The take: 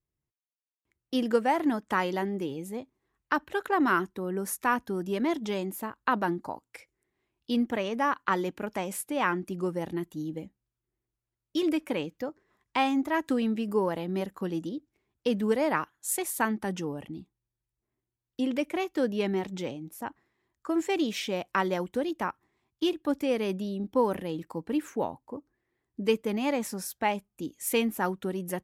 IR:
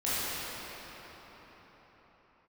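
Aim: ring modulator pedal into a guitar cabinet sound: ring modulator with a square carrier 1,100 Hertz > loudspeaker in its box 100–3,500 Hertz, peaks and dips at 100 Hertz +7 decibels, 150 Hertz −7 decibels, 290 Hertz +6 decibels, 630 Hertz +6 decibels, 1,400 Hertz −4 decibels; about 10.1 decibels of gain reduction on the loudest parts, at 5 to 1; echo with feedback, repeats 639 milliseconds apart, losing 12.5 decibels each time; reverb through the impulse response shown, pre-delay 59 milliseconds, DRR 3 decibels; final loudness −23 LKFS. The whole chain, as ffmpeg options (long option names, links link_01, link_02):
-filter_complex "[0:a]acompressor=threshold=-31dB:ratio=5,aecho=1:1:639|1278|1917:0.237|0.0569|0.0137,asplit=2[link_01][link_02];[1:a]atrim=start_sample=2205,adelay=59[link_03];[link_02][link_03]afir=irnorm=-1:irlink=0,volume=-14.5dB[link_04];[link_01][link_04]amix=inputs=2:normalize=0,aeval=exprs='val(0)*sgn(sin(2*PI*1100*n/s))':channel_layout=same,highpass=100,equalizer=frequency=100:width_type=q:width=4:gain=7,equalizer=frequency=150:width_type=q:width=4:gain=-7,equalizer=frequency=290:width_type=q:width=4:gain=6,equalizer=frequency=630:width_type=q:width=4:gain=6,equalizer=frequency=1400:width_type=q:width=4:gain=-4,lowpass=frequency=3500:width=0.5412,lowpass=frequency=3500:width=1.3066,volume=11.5dB"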